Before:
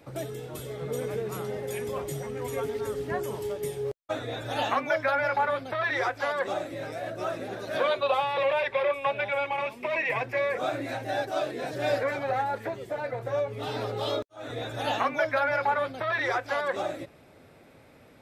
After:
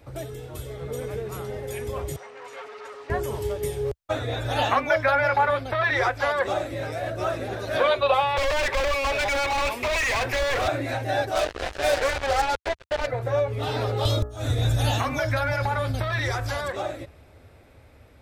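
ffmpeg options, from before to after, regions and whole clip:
ffmpeg -i in.wav -filter_complex "[0:a]asettb=1/sr,asplit=3[link_01][link_02][link_03];[link_01]atrim=end=2.164[link_04];[link_02]atrim=start=2.16:end=3.1,asetpts=PTS-STARTPTS,afade=type=in:duration=0.004:curve=qsin,afade=type=out:start_time=0.936:duration=0.004:curve=qsin,bandreject=frequency=3300:width=6.7,volume=32.5dB,asoftclip=hard,volume=-32.5dB,highpass=710,lowpass=4600[link_05];[link_03]atrim=start=3.096[link_06];[link_04][link_05]acrossfade=duration=0.004:curve1=hsin:curve2=qsin[link_07];[link_07][link_06]acrossfade=duration=0.004:curve1=qsin:curve2=hsin,asettb=1/sr,asplit=3[link_08][link_09][link_10];[link_08]atrim=end=8.374[link_11];[link_09]atrim=start=8.37:end=10.68,asetpts=PTS-STARTPTS,afade=type=in:duration=0.004:curve=qsin,afade=type=out:start_time=2.306:duration=0.004:curve=qsin,aemphasis=mode=production:type=50fm,asplit=2[link_12][link_13];[link_13]highpass=frequency=720:poles=1,volume=20dB,asoftclip=type=tanh:threshold=-15dB[link_14];[link_12][link_14]amix=inputs=2:normalize=0,lowpass=frequency=1800:poles=1,volume=-6dB,asoftclip=type=hard:threshold=-28dB[link_15];[link_10]atrim=start=10.676[link_16];[link_11][link_15]acrossfade=duration=0.004:curve1=hsin:curve2=qsin[link_17];[link_17][link_16]acrossfade=duration=0.004:curve1=qsin:curve2=hsin,asettb=1/sr,asplit=3[link_18][link_19][link_20];[link_18]atrim=end=11.354[link_21];[link_19]atrim=start=11.35:end=13.07,asetpts=PTS-STARTPTS,afade=type=in:duration=0.004:curve=qsin,afade=type=out:start_time=1.716:duration=0.004:curve=qsin,highpass=390,lowpass=5600,asplit=2[link_22][link_23];[link_23]adelay=15,volume=-11.5dB[link_24];[link_22][link_24]amix=inputs=2:normalize=0,atrim=end_sample=75852,acrusher=bits=4:mix=0:aa=0.5[link_25];[link_20]atrim=start=13.066[link_26];[link_21][link_25]acrossfade=duration=0.004:curve1=hsin:curve2=qsin[link_27];[link_27][link_26]acrossfade=duration=0.004:curve1=qsin:curve2=hsin,asettb=1/sr,asplit=3[link_28][link_29][link_30];[link_28]atrim=end=14.054[link_31];[link_29]atrim=start=14.05:end=16.72,asetpts=PTS-STARTPTS,afade=type=in:duration=0.004:curve=qsin,afade=type=out:start_time=2.666:duration=0.004:curve=qsin,bass=frequency=250:gain=14,treble=frequency=4000:gain=13,acompressor=threshold=-29dB:ratio=2:attack=3.2:release=140:knee=1:detection=peak,bandreject=frequency=60.1:width_type=h:width=4,bandreject=frequency=120.2:width_type=h:width=4,bandreject=frequency=180.3:width_type=h:width=4,bandreject=frequency=240.4:width_type=h:width=4,bandreject=frequency=300.5:width_type=h:width=4,bandreject=frequency=360.6:width_type=h:width=4,bandreject=frequency=420.7:width_type=h:width=4,bandreject=frequency=480.8:width_type=h:width=4,bandreject=frequency=540.9:width_type=h:width=4,bandreject=frequency=601:width_type=h:width=4,bandreject=frequency=661.1:width_type=h:width=4,bandreject=frequency=721.2:width_type=h:width=4,bandreject=frequency=781.3:width_type=h:width=4,bandreject=frequency=841.4:width_type=h:width=4,bandreject=frequency=901.5:width_type=h:width=4,bandreject=frequency=961.6:width_type=h:width=4,bandreject=frequency=1021.7:width_type=h:width=4,bandreject=frequency=1081.8:width_type=h:width=4,bandreject=frequency=1141.9:width_type=h:width=4,bandreject=frequency=1202:width_type=h:width=4,bandreject=frequency=1262.1:width_type=h:width=4,bandreject=frequency=1322.2:width_type=h:width=4,bandreject=frequency=1382.3:width_type=h:width=4,bandreject=frequency=1442.4:width_type=h:width=4,bandreject=frequency=1502.5:width_type=h:width=4,bandreject=frequency=1562.6:width_type=h:width=4,bandreject=frequency=1622.7:width_type=h:width=4,bandreject=frequency=1682.8:width_type=h:width=4,bandreject=frequency=1742.9:width_type=h:width=4,bandreject=frequency=1803:width_type=h:width=4,bandreject=frequency=1863.1:width_type=h:width=4,bandreject=frequency=1923.2:width_type=h:width=4[link_32];[link_30]atrim=start=16.716[link_33];[link_31][link_32]acrossfade=duration=0.004:curve1=hsin:curve2=qsin[link_34];[link_34][link_33]acrossfade=duration=0.004:curve1=qsin:curve2=hsin,lowshelf=frequency=110:width_type=q:width=1.5:gain=13,dynaudnorm=framelen=620:gausssize=9:maxgain=5dB" out.wav

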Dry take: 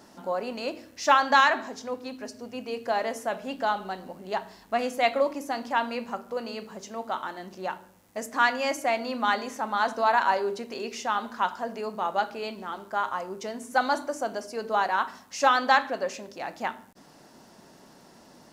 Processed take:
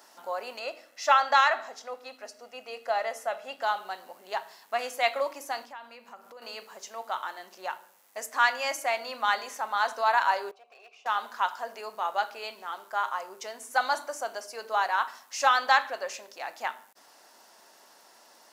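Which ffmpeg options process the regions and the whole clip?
ffmpeg -i in.wav -filter_complex "[0:a]asettb=1/sr,asplit=3[link_01][link_02][link_03];[link_01]atrim=end=0.594[link_04];[link_02]atrim=start=0.59:end=3.62,asetpts=PTS-STARTPTS,afade=type=in:duration=0.004:curve=qsin,afade=type=out:start_time=3.026:duration=0.004:curve=qsin,highshelf=frequency=3900:gain=-6.5,aecho=1:1:1.5:0.39,atrim=end_sample=133623[link_05];[link_03]atrim=start=3.616[link_06];[link_04][link_05]acrossfade=duration=0.004:curve1=hsin:curve2=qsin[link_07];[link_07][link_06]acrossfade=duration=0.004:curve1=qsin:curve2=hsin,asettb=1/sr,asplit=3[link_08][link_09][link_10];[link_08]atrim=end=5.644[link_11];[link_09]atrim=start=5.64:end=6.42,asetpts=PTS-STARTPTS,afade=type=in:duration=0.004:curve=qsin,afade=type=out:start_time=0.776:duration=0.004:curve=qsin,bass=frequency=250:gain=11,treble=frequency=4000:gain=-2,acompressor=threshold=-39dB:ratio=5:attack=3.2:release=140:knee=1:detection=peak[link_12];[link_10]atrim=start=6.416[link_13];[link_11][link_12]acrossfade=duration=0.004:curve1=hsin:curve2=qsin[link_14];[link_14][link_13]acrossfade=duration=0.004:curve1=qsin:curve2=hsin,asettb=1/sr,asplit=3[link_15][link_16][link_17];[link_15]atrim=end=10.514[link_18];[link_16]atrim=start=10.51:end=11.06,asetpts=PTS-STARTPTS,afade=type=in:duration=0.004:curve=qsin,afade=type=out:start_time=0.546:duration=0.004:curve=qsin,asplit=3[link_19][link_20][link_21];[link_19]bandpass=frequency=730:width_type=q:width=8,volume=0dB[link_22];[link_20]bandpass=frequency=1090:width_type=q:width=8,volume=-6dB[link_23];[link_21]bandpass=frequency=2440:width_type=q:width=8,volume=-9dB[link_24];[link_22][link_23][link_24]amix=inputs=3:normalize=0,aeval=exprs='clip(val(0),-1,0.00473)':channel_layout=same[link_25];[link_17]atrim=start=11.056[link_26];[link_18][link_25]acrossfade=duration=0.004:curve1=hsin:curve2=qsin[link_27];[link_27][link_26]acrossfade=duration=0.004:curve1=qsin:curve2=hsin,highpass=700,highshelf=frequency=11000:gain=6.5" out.wav

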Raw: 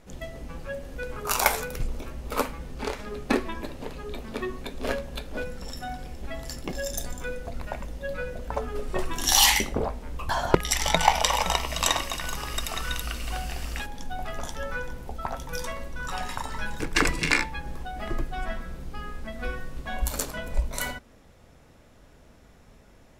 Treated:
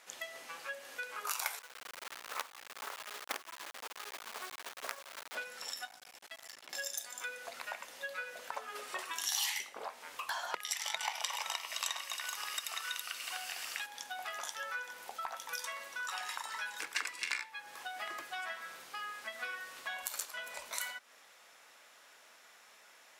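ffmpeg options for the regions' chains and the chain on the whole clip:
ffmpeg -i in.wav -filter_complex "[0:a]asettb=1/sr,asplit=3[link_01][link_02][link_03];[link_01]atrim=end=1.594[link_04];[link_02]atrim=start=1.59:end=5.35,asetpts=PTS-STARTPTS,afade=type=in:duration=0.004:curve=qsin,afade=type=out:start_time=3.756:duration=0.004:curve=qsin,lowpass=frequency=1400:width=0.5412,lowpass=frequency=1400:width=1.3066,adynamicequalizer=threshold=0.0112:dfrequency=390:dqfactor=0.95:tfrequency=390:tqfactor=0.95:attack=5:release=100:ratio=0.375:range=2:mode=cutabove:tftype=bell,acrusher=bits=4:dc=4:mix=0:aa=0.000001[link_05];[link_03]atrim=start=5.346[link_06];[link_04][link_05]acrossfade=duration=0.004:curve1=hsin:curve2=qsin[link_07];[link_07][link_06]acrossfade=duration=0.004:curve1=qsin:curve2=hsin,asettb=1/sr,asplit=3[link_08][link_09][link_10];[link_08]atrim=end=5.854[link_11];[link_09]atrim=start=5.85:end=6.73,asetpts=PTS-STARTPTS,afade=type=in:duration=0.004:curve=qsin,afade=type=out:start_time=0.876:duration=0.004:curve=qsin,acrossover=split=230|3900[link_12][link_13][link_14];[link_12]acompressor=threshold=-37dB:ratio=4[link_15];[link_13]acompressor=threshold=-48dB:ratio=4[link_16];[link_14]acompressor=threshold=-57dB:ratio=4[link_17];[link_15][link_16][link_17]amix=inputs=3:normalize=0,aeval=exprs='max(val(0),0)':channel_layout=same[link_18];[link_10]atrim=start=6.726[link_19];[link_11][link_18]acrossfade=duration=0.004:curve1=hsin:curve2=qsin[link_20];[link_20][link_19]acrossfade=duration=0.004:curve1=qsin:curve2=hsin,highpass=1200,acompressor=threshold=-44dB:ratio=3,volume=4.5dB" out.wav

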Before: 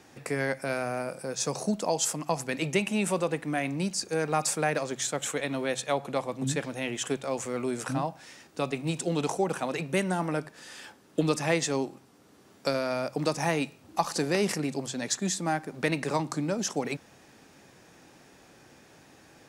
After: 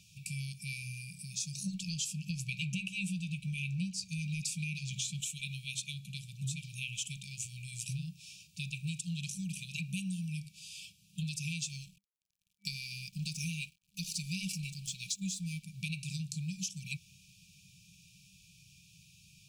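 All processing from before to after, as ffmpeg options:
ffmpeg -i in.wav -filter_complex "[0:a]asettb=1/sr,asplit=3[link_01][link_02][link_03];[link_01]atrim=end=1.654[link_04];[link_02]atrim=start=1.65:end=5.21,asetpts=PTS-STARTPTS,afade=type=in:duration=0.004:curve=qsin,afade=type=out:start_time=3.556:duration=0.004:curve=qsin,highshelf=frequency=5300:gain=-11.5,acontrast=86,asplit=2[link_05][link_06];[link_06]adelay=16,volume=-13dB[link_07];[link_05][link_07]amix=inputs=2:normalize=0,atrim=end_sample=156996[link_08];[link_03]atrim=start=5.206[link_09];[link_04][link_08]acrossfade=duration=0.004:curve1=hsin:curve2=qsin[link_10];[link_10][link_09]acrossfade=duration=0.004:curve1=qsin:curve2=hsin,asettb=1/sr,asplit=3[link_11][link_12][link_13];[link_11]atrim=end=11.694[link_14];[link_12]atrim=start=11.69:end=15.63,asetpts=PTS-STARTPTS,afade=type=in:duration=0.004:curve=qsin,afade=type=out:start_time=3.936:duration=0.004:curve=qsin,aecho=1:1:4.8:0.43,atrim=end_sample=173754,aeval=exprs='sgn(val(0))*max(abs(val(0))-0.00335,0)':channel_layout=same[link_15];[link_13]atrim=start=15.626[link_16];[link_14][link_15]acrossfade=duration=0.004:curve1=hsin:curve2=qsin[link_17];[link_17][link_16]acrossfade=duration=0.004:curve1=qsin:curve2=hsin,afftfilt=real='re*(1-between(b*sr/4096,200,2300))':imag='im*(1-between(b*sr/4096,200,2300))':win_size=4096:overlap=0.75,acompressor=threshold=-34dB:ratio=6" out.wav

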